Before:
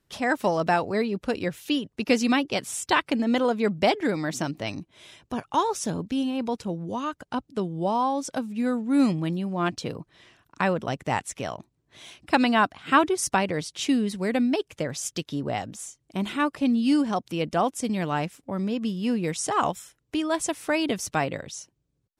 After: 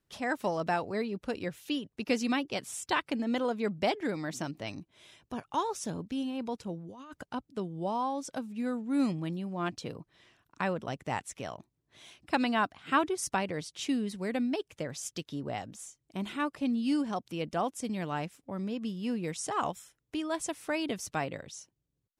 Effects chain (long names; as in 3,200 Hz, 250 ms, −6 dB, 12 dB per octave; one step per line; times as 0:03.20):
0:06.77–0:07.26: compressor whose output falls as the input rises −38 dBFS, ratio −1
level −7.5 dB